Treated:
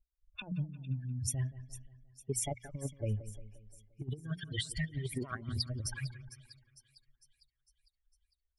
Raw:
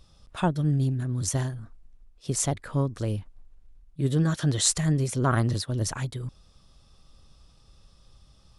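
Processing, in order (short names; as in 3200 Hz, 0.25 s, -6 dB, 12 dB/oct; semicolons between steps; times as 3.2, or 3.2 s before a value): per-bin expansion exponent 3; bell 6500 Hz -13 dB 0.23 oct; notches 60/120/180/240 Hz; negative-ratio compressor -36 dBFS, ratio -0.5; low-pass opened by the level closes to 600 Hz, open at -35.5 dBFS; split-band echo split 2800 Hz, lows 0.175 s, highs 0.453 s, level -14.5 dB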